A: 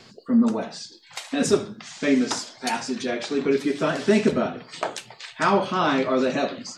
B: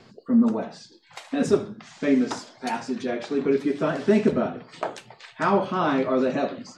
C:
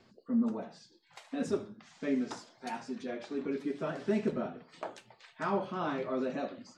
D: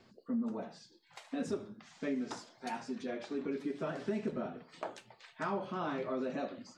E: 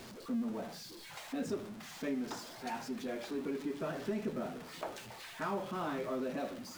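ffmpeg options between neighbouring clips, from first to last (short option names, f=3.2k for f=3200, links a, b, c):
-af "highshelf=f=2.3k:g=-11"
-af "flanger=delay=3.3:depth=2.6:regen=-65:speed=0.6:shape=sinusoidal,volume=-7dB"
-af "acompressor=threshold=-33dB:ratio=3"
-af "aeval=exprs='val(0)+0.5*0.00668*sgn(val(0))':c=same,volume=-2dB"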